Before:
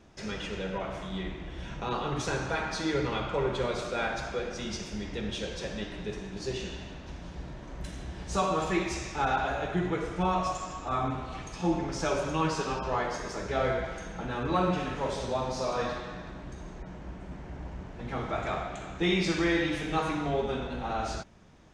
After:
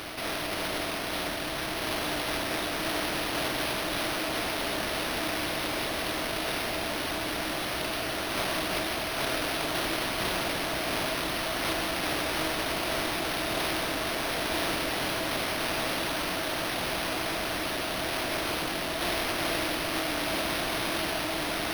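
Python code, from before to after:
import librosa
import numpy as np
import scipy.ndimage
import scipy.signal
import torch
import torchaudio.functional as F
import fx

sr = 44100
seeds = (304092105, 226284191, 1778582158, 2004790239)

p1 = fx.spec_flatten(x, sr, power=0.11)
p2 = fx.peak_eq(p1, sr, hz=310.0, db=12.5, octaves=0.4)
p3 = p2 + fx.echo_diffused(p2, sr, ms=1376, feedback_pct=72, wet_db=-4, dry=0)
p4 = np.repeat(p3[::6], 6)[:len(p3)]
p5 = fx.peak_eq(p4, sr, hz=650.0, db=9.5, octaves=0.2)
p6 = fx.env_flatten(p5, sr, amount_pct=70)
y = F.gain(torch.from_numpy(p6), -6.5).numpy()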